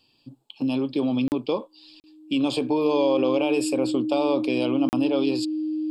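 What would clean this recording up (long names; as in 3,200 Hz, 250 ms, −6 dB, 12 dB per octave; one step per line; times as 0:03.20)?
notch filter 310 Hz, Q 30
repair the gap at 0:01.28/0:02.00/0:04.89, 39 ms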